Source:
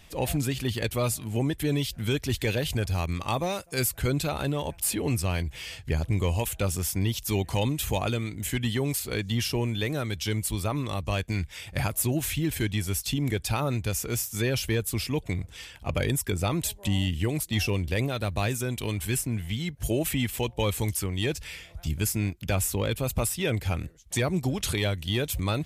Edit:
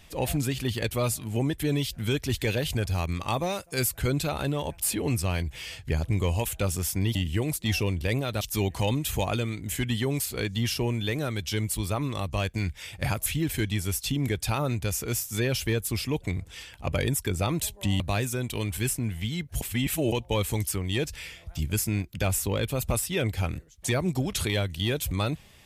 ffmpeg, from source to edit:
-filter_complex "[0:a]asplit=7[a][b][c][d][e][f][g];[a]atrim=end=7.152[h];[b]atrim=start=17.018:end=18.282[i];[c]atrim=start=7.148:end=12.002[j];[d]atrim=start=12.278:end=17.022[k];[e]atrim=start=18.278:end=19.892[l];[f]atrim=start=19.888:end=20.402,asetpts=PTS-STARTPTS,areverse[m];[g]atrim=start=20.398[n];[h][i]acrossfade=d=0.004:c1=hsin:c2=hsin[o];[o][j]acrossfade=d=0.004:c1=hsin:c2=hsin[p];[p][k]acrossfade=d=0.004:c1=hsin:c2=hsin[q];[q][l]acrossfade=d=0.004:c1=hsin:c2=hsin[r];[r][m]acrossfade=d=0.004:c1=hsin:c2=hsin[s];[s][n]acrossfade=d=0.004:c1=hsin:c2=hsin"

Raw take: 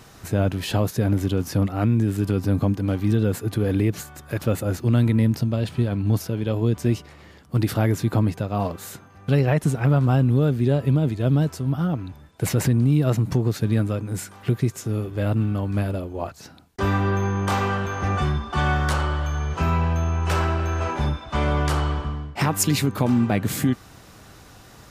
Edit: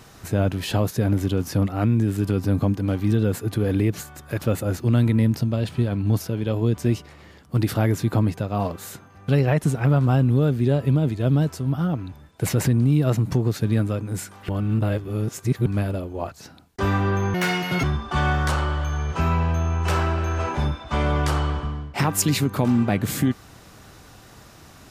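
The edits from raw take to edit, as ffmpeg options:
-filter_complex "[0:a]asplit=5[a][b][c][d][e];[a]atrim=end=14.492[f];[b]atrim=start=14.488:end=15.662,asetpts=PTS-STARTPTS,areverse[g];[c]atrim=start=15.658:end=17.344[h];[d]atrim=start=17.34:end=18.25,asetpts=PTS-STARTPTS,asetrate=81144,aresample=44100,atrim=end_sample=21810,asetpts=PTS-STARTPTS[i];[e]atrim=start=18.246[j];[f][g]acrossfade=d=0.004:c1=hsin:c2=hsin[k];[k][h]acrossfade=d=0.004:c1=hsin:c2=hsin[l];[l][i]acrossfade=d=0.004:c1=hsin:c2=hsin[m];[m][j]acrossfade=d=0.004:c1=hsin:c2=hsin"

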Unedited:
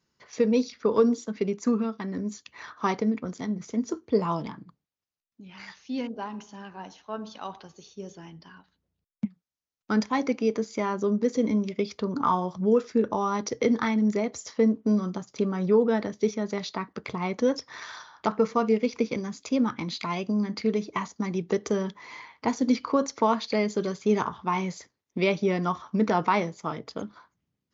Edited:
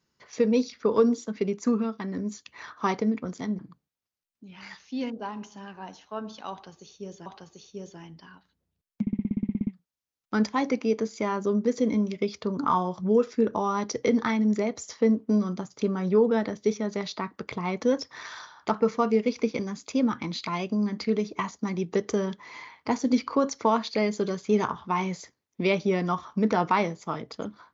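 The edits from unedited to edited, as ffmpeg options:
-filter_complex "[0:a]asplit=14[a][b][c][d][e][f][g][h][i][j][k][l][m][n];[a]atrim=end=3.592[o];[b]atrim=start=4.558:end=8.232[p];[c]atrim=start=7.488:end=9.302[q];[d]atrim=start=9.238:end=9.302[r];[e]atrim=start=9.238:end=9.302[s];[f]atrim=start=9.238:end=9.302[t];[g]atrim=start=9.238:end=9.302[u];[h]atrim=start=9.238:end=9.302[v];[i]atrim=start=9.238:end=9.302[w];[j]atrim=start=9.238:end=9.302[x];[k]atrim=start=9.238:end=9.302[y];[l]atrim=start=9.238:end=9.302[z];[m]atrim=start=9.238:end=9.302[aa];[n]atrim=start=9.238[ab];[o][p]acrossfade=d=0.004:c1=hsin:c2=hsin[ac];[ac][q]acrossfade=d=0.004:c1=hsin:c2=hsin[ad];[ad][r]acrossfade=d=0.004:c1=hsin:c2=hsin[ae];[ae][s]acrossfade=d=0.004:c1=hsin:c2=hsin[af];[af][t]acrossfade=d=0.004:c1=hsin:c2=hsin[ag];[ag][u]acrossfade=d=0.004:c1=hsin:c2=hsin[ah];[ah][v]acrossfade=d=0.004:c1=hsin:c2=hsin[ai];[ai][w]acrossfade=d=0.004:c1=hsin:c2=hsin[aj];[aj][x]acrossfade=d=0.004:c1=hsin:c2=hsin[ak];[ak][y]acrossfade=d=0.004:c1=hsin:c2=hsin[al];[al][z]acrossfade=d=0.004:c1=hsin:c2=hsin[am];[am][aa]acrossfade=d=0.004:c1=hsin:c2=hsin[an];[an][ab]acrossfade=d=0.004:c1=hsin:c2=hsin"

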